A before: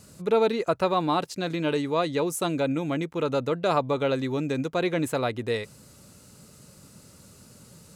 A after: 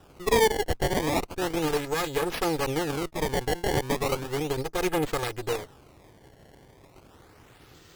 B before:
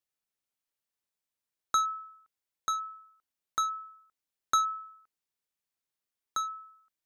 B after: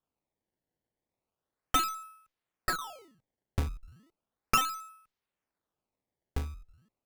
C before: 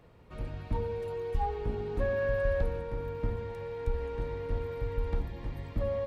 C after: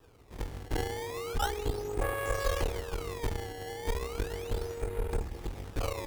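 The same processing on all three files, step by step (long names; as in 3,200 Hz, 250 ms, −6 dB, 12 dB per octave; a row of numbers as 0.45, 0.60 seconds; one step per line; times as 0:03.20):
lower of the sound and its delayed copy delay 2.4 ms
sample-and-hold swept by an LFO 20×, swing 160% 0.35 Hz
harmonic generator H 8 −17 dB, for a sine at −12.5 dBFS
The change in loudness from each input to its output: −1.0, −0.5, −1.0 LU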